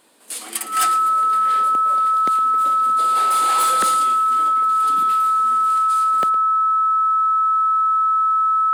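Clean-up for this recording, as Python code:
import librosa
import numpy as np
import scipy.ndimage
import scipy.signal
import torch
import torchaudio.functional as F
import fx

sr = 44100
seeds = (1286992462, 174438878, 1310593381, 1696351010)

y = fx.fix_declip(x, sr, threshold_db=-12.0)
y = fx.notch(y, sr, hz=1300.0, q=30.0)
y = fx.fix_echo_inverse(y, sr, delay_ms=112, level_db=-16.5)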